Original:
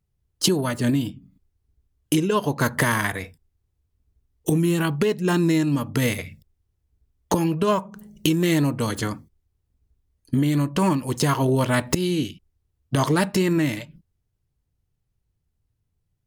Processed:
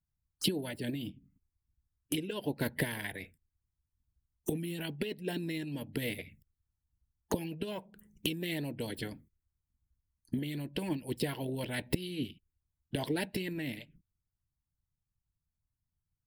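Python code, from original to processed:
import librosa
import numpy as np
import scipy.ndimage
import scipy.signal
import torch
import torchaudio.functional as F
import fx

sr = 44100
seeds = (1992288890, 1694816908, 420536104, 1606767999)

y = fx.env_phaser(x, sr, low_hz=480.0, high_hz=1200.0, full_db=-24.0)
y = fx.hpss(y, sr, part='harmonic', gain_db=-11)
y = y * 10.0 ** (-6.5 / 20.0)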